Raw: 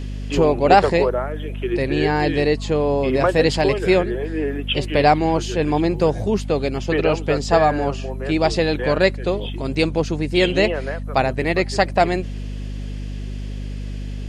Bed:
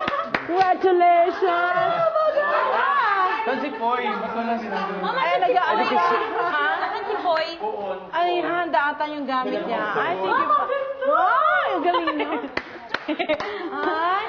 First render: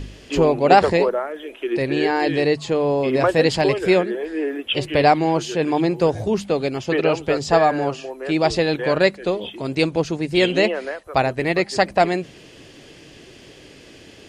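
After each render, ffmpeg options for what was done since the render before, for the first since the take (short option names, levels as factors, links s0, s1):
-af "bandreject=f=50:t=h:w=4,bandreject=f=100:t=h:w=4,bandreject=f=150:t=h:w=4,bandreject=f=200:t=h:w=4,bandreject=f=250:t=h:w=4"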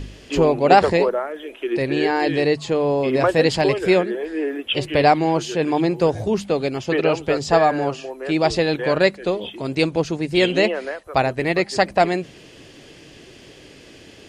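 -af anull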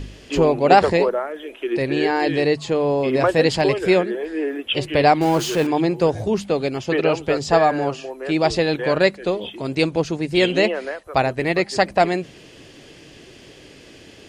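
-filter_complex "[0:a]asettb=1/sr,asplit=3[s0][s1][s2];[s0]atrim=end=5.214[s3];[s1]atrim=start=5.21:end=5.67,asetpts=PTS-STARTPTS,afade=t=in:d=0.004:c=qsin,afade=t=out:st=0.456:d=0.004:c=qsin,aeval=exprs='val(0)+0.5*0.0531*sgn(val(0))':c=same[s4];[s2]atrim=start=5.666[s5];[s3][s4]acrossfade=d=0.004:c1=hsin:c2=qsin[s6];[s6][s5]acrossfade=d=0.004:c1=qsin:c2=hsin"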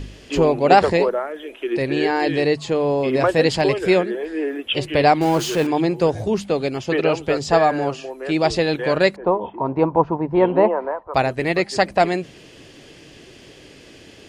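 -filter_complex "[0:a]asettb=1/sr,asplit=3[s0][s1][s2];[s0]atrim=end=9.164[s3];[s1]atrim=start=9.16:end=11.14,asetpts=PTS-STARTPTS,afade=t=in:d=0.004:c=qsin,afade=t=out:st=1.976:d=0.004:c=qsin,lowpass=f=960:t=q:w=7.1[s4];[s2]atrim=start=11.136[s5];[s3][s4]acrossfade=d=0.004:c1=hsin:c2=qsin[s6];[s6][s5]acrossfade=d=0.004:c1=qsin:c2=hsin"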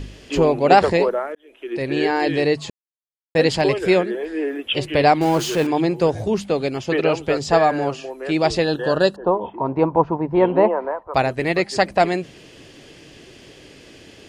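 -filter_complex "[0:a]asettb=1/sr,asplit=3[s0][s1][s2];[s0]atrim=end=8.644[s3];[s1]atrim=start=8.64:end=9.37,asetpts=PTS-STARTPTS,afade=t=in:d=0.004:c=qsin,afade=t=out:st=0.726:d=0.004:c=qsin,asuperstop=centerf=2200:order=8:qfactor=2.6[s4];[s2]atrim=start=9.366[s5];[s3][s4]acrossfade=d=0.004:c1=hsin:c2=qsin[s6];[s6][s5]acrossfade=d=0.004:c1=qsin:c2=hsin,asplit=4[s7][s8][s9][s10];[s7]atrim=end=1.35,asetpts=PTS-STARTPTS,afade=t=out:st=1.346:d=0.004:c=hsin[s11];[s8]atrim=start=1.35:end=2.7,asetpts=PTS-STARTPTS,afade=t=in:d=0.64,afade=t=out:st=1.346:d=0.004:c=hsin[s12];[s9]atrim=start=2.7:end=3.35,asetpts=PTS-STARTPTS,volume=0[s13];[s10]atrim=start=3.35,asetpts=PTS-STARTPTS,afade=t=in:d=0.004:c=hsin[s14];[s11][s12][s13][s14]concat=n=4:v=0:a=1"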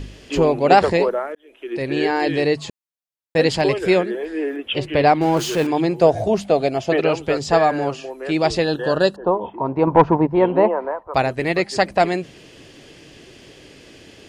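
-filter_complex "[0:a]asettb=1/sr,asplit=3[s0][s1][s2];[s0]atrim=end=4.564[s3];[s1]atrim=start=4.56:end=5.37,asetpts=PTS-STARTPTS,afade=t=in:d=0.004:c=qsin,afade=t=out:st=0.806:d=0.004:c=qsin,aemphasis=mode=reproduction:type=cd[s4];[s2]atrim=start=5.366[s5];[s3][s4]acrossfade=d=0.004:c1=hsin:c2=qsin[s6];[s6][s5]acrossfade=d=0.004:c1=qsin:c2=hsin,asettb=1/sr,asplit=3[s7][s8][s9];[s7]atrim=end=6.014[s10];[s8]atrim=start=6.01:end=7,asetpts=PTS-STARTPTS,afade=t=in:d=0.004:c=qsin,afade=t=out:st=0.986:d=0.004:c=qsin,equalizer=f=670:t=o:w=0.36:g=14.5[s11];[s9]atrim=start=6.996[s12];[s10][s11]acrossfade=d=0.004:c1=hsin:c2=qsin[s13];[s13][s12]acrossfade=d=0.004:c1=qsin:c2=hsin,asettb=1/sr,asplit=3[s14][s15][s16];[s14]atrim=end=9.874[s17];[s15]atrim=start=9.87:end=10.27,asetpts=PTS-STARTPTS,afade=t=in:d=0.004:c=qsin,afade=t=out:st=0.396:d=0.004:c=qsin,acontrast=70[s18];[s16]atrim=start=10.266[s19];[s17][s18]acrossfade=d=0.004:c1=hsin:c2=qsin[s20];[s20][s19]acrossfade=d=0.004:c1=qsin:c2=hsin"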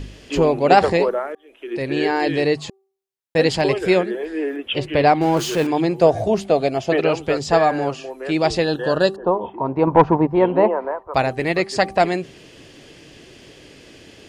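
-af "bandreject=f=387.2:t=h:w=4,bandreject=f=774.4:t=h:w=4,bandreject=f=1161.6:t=h:w=4"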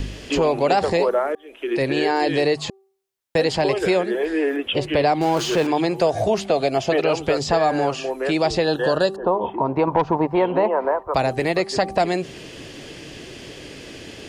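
-filter_complex "[0:a]acrossover=split=530|1100|3400|6800[s0][s1][s2][s3][s4];[s0]acompressor=threshold=0.0355:ratio=4[s5];[s1]acompressor=threshold=0.0631:ratio=4[s6];[s2]acompressor=threshold=0.0141:ratio=4[s7];[s3]acompressor=threshold=0.0141:ratio=4[s8];[s4]acompressor=threshold=0.00282:ratio=4[s9];[s5][s6][s7][s8][s9]amix=inputs=5:normalize=0,asplit=2[s10][s11];[s11]alimiter=limit=0.119:level=0:latency=1:release=92,volume=1.12[s12];[s10][s12]amix=inputs=2:normalize=0"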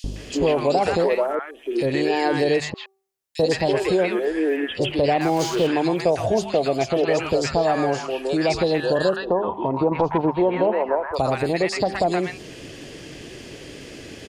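-filter_complex "[0:a]acrossover=split=1000|3400[s0][s1][s2];[s0]adelay=40[s3];[s1]adelay=160[s4];[s3][s4][s2]amix=inputs=3:normalize=0"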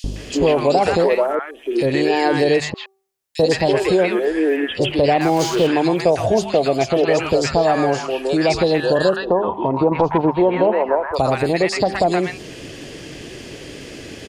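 -af "volume=1.58"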